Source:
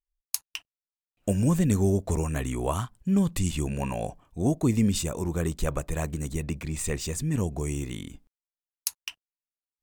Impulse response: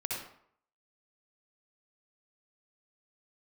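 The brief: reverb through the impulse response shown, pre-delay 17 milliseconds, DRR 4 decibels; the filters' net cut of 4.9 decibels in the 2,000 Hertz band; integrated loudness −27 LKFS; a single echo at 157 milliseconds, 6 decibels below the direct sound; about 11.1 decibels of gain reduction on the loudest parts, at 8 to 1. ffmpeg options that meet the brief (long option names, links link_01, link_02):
-filter_complex "[0:a]equalizer=frequency=2000:width_type=o:gain=-6.5,acompressor=threshold=-30dB:ratio=8,aecho=1:1:157:0.501,asplit=2[link_01][link_02];[1:a]atrim=start_sample=2205,adelay=17[link_03];[link_02][link_03]afir=irnorm=-1:irlink=0,volume=-7.5dB[link_04];[link_01][link_04]amix=inputs=2:normalize=0,volume=7dB"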